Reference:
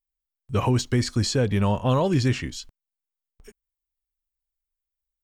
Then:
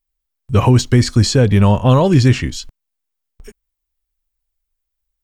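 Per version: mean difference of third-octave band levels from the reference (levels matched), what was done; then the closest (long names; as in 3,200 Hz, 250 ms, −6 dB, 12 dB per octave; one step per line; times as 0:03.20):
1.5 dB: low-shelf EQ 160 Hz +5.5 dB
level +8 dB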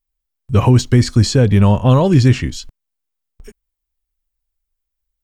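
3.0 dB: low-shelf EQ 250 Hz +7.5 dB
level +6 dB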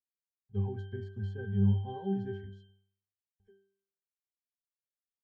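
14.0 dB: resonances in every octave G, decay 0.57 s
level +1.5 dB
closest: first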